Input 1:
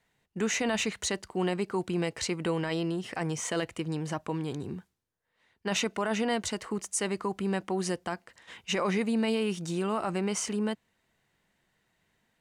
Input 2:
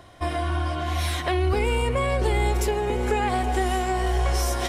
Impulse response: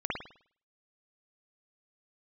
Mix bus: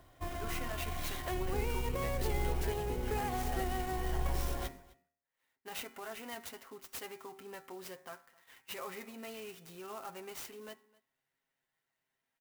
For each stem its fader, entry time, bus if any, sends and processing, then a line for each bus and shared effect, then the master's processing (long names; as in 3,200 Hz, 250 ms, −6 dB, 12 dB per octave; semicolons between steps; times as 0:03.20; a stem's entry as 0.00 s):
−5.0 dB, 0.00 s, no send, echo send −23 dB, low-shelf EQ 340 Hz −11.5 dB; comb filter 7.5 ms, depth 65%; pitch vibrato 2.3 Hz 30 cents
−5.0 dB, 0.00 s, no send, echo send −22.5 dB, sub-octave generator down 2 octaves, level 0 dB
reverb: not used
echo: single-tap delay 259 ms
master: tuned comb filter 270 Hz, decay 0.53 s, harmonics odd, mix 60%; hum removal 77.7 Hz, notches 33; converter with an unsteady clock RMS 0.041 ms